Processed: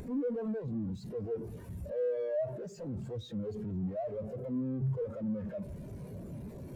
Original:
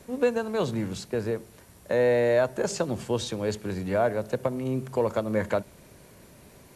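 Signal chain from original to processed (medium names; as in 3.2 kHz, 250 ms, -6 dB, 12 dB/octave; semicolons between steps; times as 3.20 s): one-bit comparator; spectral contrast expander 2.5:1; trim +1.5 dB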